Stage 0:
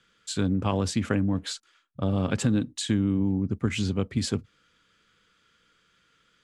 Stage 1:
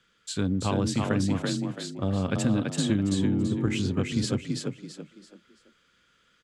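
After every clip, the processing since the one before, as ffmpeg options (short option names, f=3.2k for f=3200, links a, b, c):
-filter_complex "[0:a]asplit=5[a][b][c][d][e];[b]adelay=333,afreqshift=31,volume=-3.5dB[f];[c]adelay=666,afreqshift=62,volume=-13.1dB[g];[d]adelay=999,afreqshift=93,volume=-22.8dB[h];[e]adelay=1332,afreqshift=124,volume=-32.4dB[i];[a][f][g][h][i]amix=inputs=5:normalize=0,volume=-1.5dB"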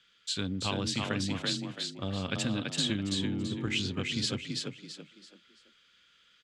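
-af "equalizer=f=3.4k:t=o:w=2:g=13.5,volume=-8dB"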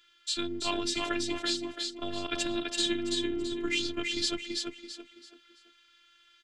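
-af "afftfilt=real='hypot(re,im)*cos(PI*b)':imag='0':win_size=512:overlap=0.75,volume=5dB"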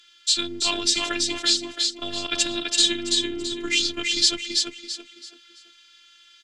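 -af "equalizer=f=6.1k:t=o:w=2.5:g=12,volume=1.5dB"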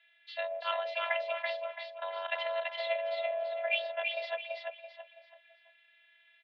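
-af "highpass=f=170:t=q:w=0.5412,highpass=f=170:t=q:w=1.307,lowpass=f=2.4k:t=q:w=0.5176,lowpass=f=2.4k:t=q:w=0.7071,lowpass=f=2.4k:t=q:w=1.932,afreqshift=320,volume=-3dB"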